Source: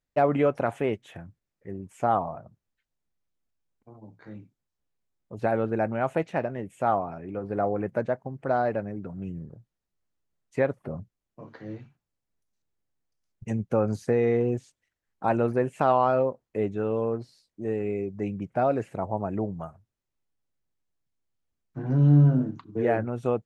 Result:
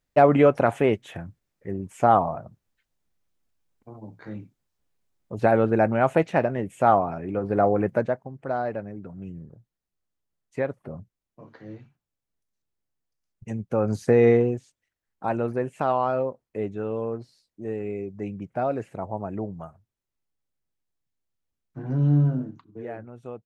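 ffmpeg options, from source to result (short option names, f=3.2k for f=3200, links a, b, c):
-af "volume=15.5dB,afade=t=out:st=7.86:d=0.41:silence=0.375837,afade=t=in:st=13.67:d=0.61:silence=0.334965,afade=t=out:st=14.28:d=0.28:silence=0.354813,afade=t=out:st=22.14:d=0.73:silence=0.316228"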